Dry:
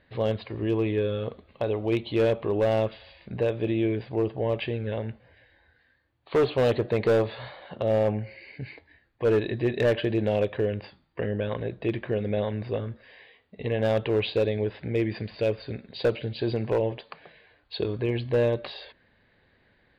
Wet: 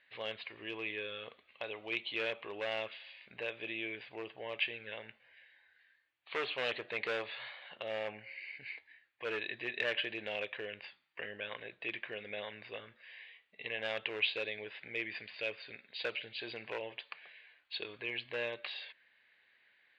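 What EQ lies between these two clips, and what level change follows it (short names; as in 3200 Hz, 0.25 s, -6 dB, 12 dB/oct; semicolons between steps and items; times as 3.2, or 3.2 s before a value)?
band-pass 2500 Hz, Q 1.9; +2.5 dB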